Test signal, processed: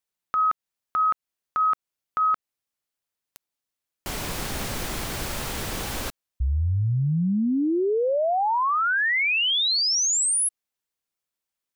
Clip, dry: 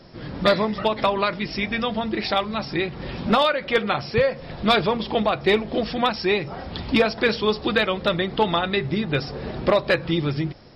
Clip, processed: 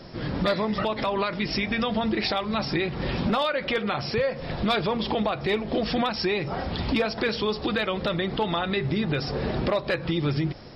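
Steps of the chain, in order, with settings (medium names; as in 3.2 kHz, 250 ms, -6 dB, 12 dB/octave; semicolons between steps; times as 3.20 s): compression 5:1, threshold -24 dBFS; peak limiter -20.5 dBFS; trim +4 dB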